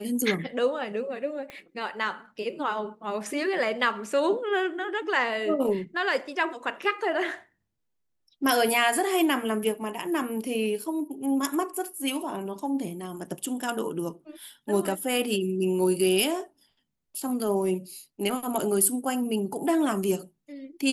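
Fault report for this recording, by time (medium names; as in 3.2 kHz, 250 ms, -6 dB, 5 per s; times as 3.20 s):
1.50 s: pop -25 dBFS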